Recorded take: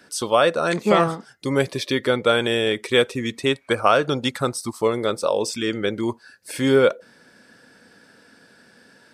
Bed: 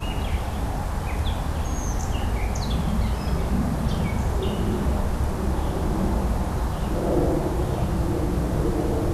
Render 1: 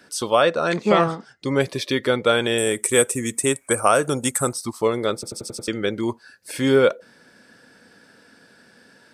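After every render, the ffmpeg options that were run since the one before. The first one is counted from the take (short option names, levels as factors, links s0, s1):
-filter_complex "[0:a]asettb=1/sr,asplit=3[s0][s1][s2];[s0]atrim=end=0.424[s3];[s1]atrim=start=0.42:end=1.61,asetpts=PTS-STARTPTS,afade=t=in:d=0.004:c=qsin,afade=t=out:st=1.186:d=0.004:c=qsin,lowpass=6700[s4];[s2]atrim=start=1.606[s5];[s3][s4]acrossfade=d=0.004:c1=hsin:c2=qsin[s6];[s6][s5]acrossfade=d=0.004:c1=qsin:c2=hsin,asettb=1/sr,asplit=3[s7][s8][s9];[s7]atrim=end=2.584[s10];[s8]atrim=start=2.58:end=4.53,asetpts=PTS-STARTPTS,afade=t=in:d=0.004:c=qsin,afade=t=out:st=1.946:d=0.004:c=qsin,highshelf=f=6000:t=q:w=3:g=13.5[s11];[s9]atrim=start=4.526[s12];[s10][s11]acrossfade=d=0.004:c1=hsin:c2=qsin[s13];[s13][s12]acrossfade=d=0.004:c1=qsin:c2=hsin,asplit=7[s14][s15][s16][s17][s18][s19][s20];[s14]atrim=end=5.232[s21];[s15]atrim=start=5.138:end=5.232[s22];[s16]atrim=start=5.138:end=5.232[s23];[s17]atrim=start=5.138:end=5.232[s24];[s18]atrim=start=5.138:end=5.232[s25];[s19]atrim=start=5.138:end=5.232[s26];[s20]atrim=start=5.678[s27];[s21][s22]acrossfade=d=0.004:c1=hsin:c2=hsin[s28];[s28][s23]acrossfade=d=0.004:c1=hsin:c2=hsin[s29];[s29][s24]acrossfade=d=0.004:c1=hsin:c2=hsin[s30];[s30][s25]acrossfade=d=0.004:c1=hsin:c2=hsin[s31];[s31][s26]acrossfade=d=0.004:c1=hsin:c2=hsin[s32];[s32][s27]acrossfade=d=0.004:c1=hsin:c2=hsin"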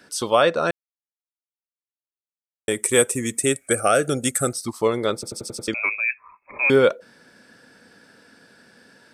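-filter_complex "[0:a]asettb=1/sr,asplit=3[s0][s1][s2];[s0]atrim=end=3.374[s3];[s1]atrim=start=3.37:end=4.68,asetpts=PTS-STARTPTS,afade=t=in:d=0.004:c=qsin,afade=t=out:st=1.306:d=0.004:c=qsin,asuperstop=centerf=980:order=4:qfactor=2.3[s4];[s2]atrim=start=4.676[s5];[s3][s4]acrossfade=d=0.004:c1=hsin:c2=qsin[s6];[s6][s5]acrossfade=d=0.004:c1=qsin:c2=hsin,asettb=1/sr,asplit=3[s7][s8][s9];[s7]atrim=end=5.744[s10];[s8]atrim=start=5.74:end=6.7,asetpts=PTS-STARTPTS,afade=t=in:d=0.004:c=qsin,afade=t=out:st=0.956:d=0.004:c=qsin,lowpass=f=2300:t=q:w=0.5098,lowpass=f=2300:t=q:w=0.6013,lowpass=f=2300:t=q:w=0.9,lowpass=f=2300:t=q:w=2.563,afreqshift=-2700[s11];[s9]atrim=start=6.696[s12];[s10][s11]acrossfade=d=0.004:c1=hsin:c2=qsin[s13];[s13][s12]acrossfade=d=0.004:c1=qsin:c2=hsin,asplit=3[s14][s15][s16];[s14]atrim=end=0.71,asetpts=PTS-STARTPTS,afade=t=out:st=0.706:d=0.004:c=hsin[s17];[s15]atrim=start=0.71:end=2.68,asetpts=PTS-STARTPTS,volume=0[s18];[s16]atrim=start=2.68,asetpts=PTS-STARTPTS,afade=t=in:d=0.004:c=hsin[s19];[s17][s18][s19]concat=n=3:v=0:a=1"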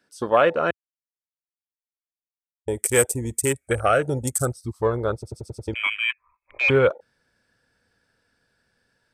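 -af "afwtdn=0.0398,asubboost=boost=12:cutoff=67"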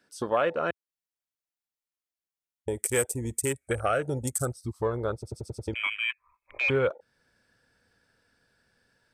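-af "acompressor=threshold=0.0178:ratio=1.5"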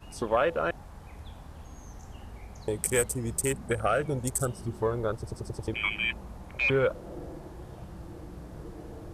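-filter_complex "[1:a]volume=0.106[s0];[0:a][s0]amix=inputs=2:normalize=0"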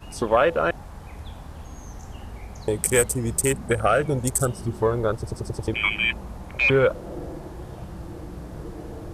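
-af "volume=2.11,alimiter=limit=0.794:level=0:latency=1"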